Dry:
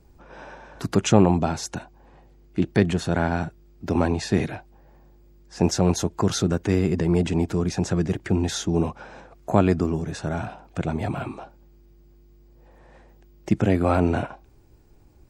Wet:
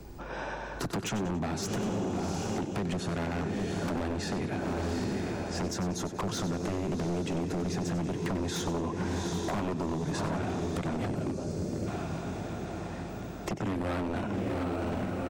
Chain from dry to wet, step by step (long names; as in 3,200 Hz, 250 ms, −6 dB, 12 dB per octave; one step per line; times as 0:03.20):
feedback delay with all-pass diffusion 776 ms, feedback 57%, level −11.5 dB
soft clipping −15 dBFS, distortion −11 dB
dynamic equaliser 290 Hz, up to +5 dB, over −34 dBFS, Q 0.74
downward compressor 10 to 1, threshold −29 dBFS, peak gain reduction 15 dB
0:11.07–0:11.87: gain on a spectral selection 630–4,100 Hz −11 dB
repeating echo 94 ms, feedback 41%, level −12.5 dB
wave folding −28.5 dBFS
0:08.14–0:10.37: parametric band 1,000 Hz +7 dB 0.26 octaves
multiband upward and downward compressor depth 40%
level +2.5 dB